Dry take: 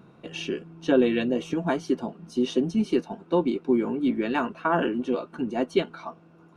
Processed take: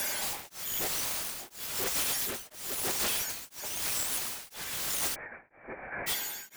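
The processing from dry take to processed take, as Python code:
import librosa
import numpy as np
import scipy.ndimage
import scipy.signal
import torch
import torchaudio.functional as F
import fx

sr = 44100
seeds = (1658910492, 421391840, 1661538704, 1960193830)

y = fx.octave_mirror(x, sr, pivot_hz=1500.0)
y = fx.peak_eq(y, sr, hz=120.0, db=-12.5, octaves=1.0)
y = fx.power_curve(y, sr, exponent=0.35)
y = (np.mod(10.0 ** (24.5 / 20.0) * y + 1.0, 2.0) - 1.0) / 10.0 ** (24.5 / 20.0)
y = fx.cheby_ripple(y, sr, hz=2400.0, ripple_db=6, at=(5.14, 6.06), fade=0.02)
y = y * np.abs(np.cos(np.pi * 1.0 * np.arange(len(y)) / sr))
y = F.gain(torch.from_numpy(y), -2.5).numpy()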